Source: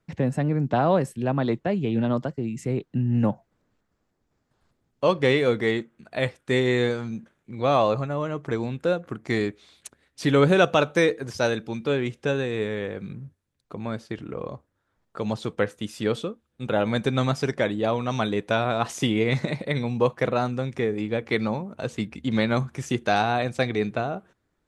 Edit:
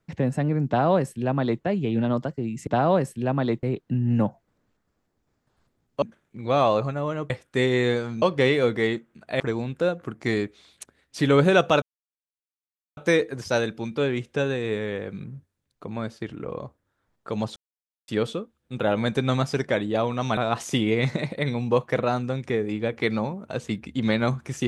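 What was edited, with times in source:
0.67–1.63 copy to 2.67
5.06–6.24 swap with 7.16–8.44
10.86 insert silence 1.15 s
15.45–15.97 mute
18.26–18.66 cut

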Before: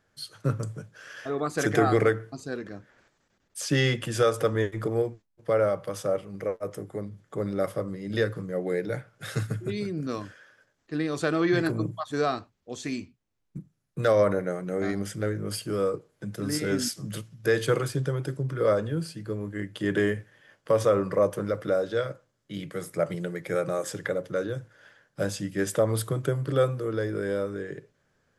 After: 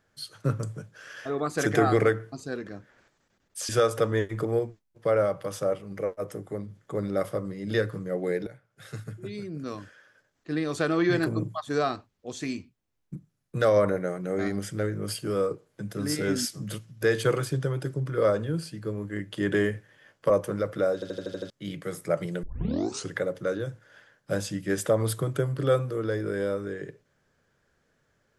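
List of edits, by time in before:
3.69–4.12 cut
8.9–10.93 fade in, from -17 dB
20.73–21.19 cut
21.83 stutter in place 0.08 s, 7 plays
23.32 tape start 0.69 s

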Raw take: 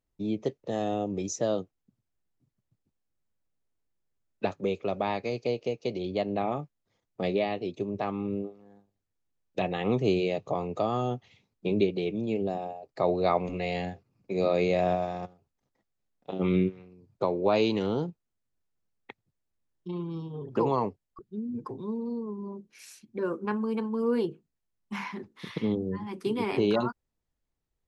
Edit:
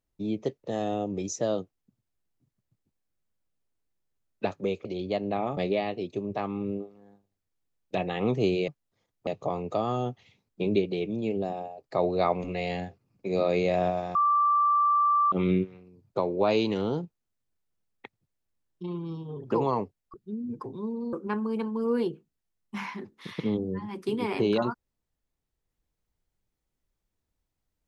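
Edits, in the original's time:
4.85–5.9 cut
6.62–7.21 move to 10.32
15.2–16.37 bleep 1170 Hz -19.5 dBFS
22.18–23.31 cut

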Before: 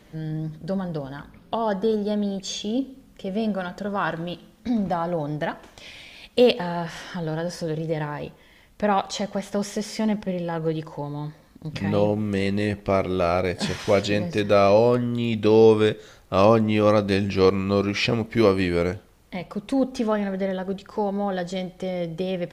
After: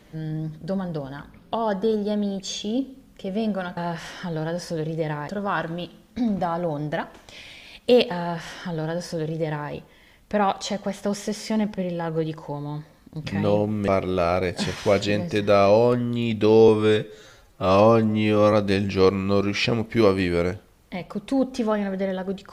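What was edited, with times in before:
6.68–8.19 copy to 3.77
12.37–12.9 cut
15.7–16.93 stretch 1.5×

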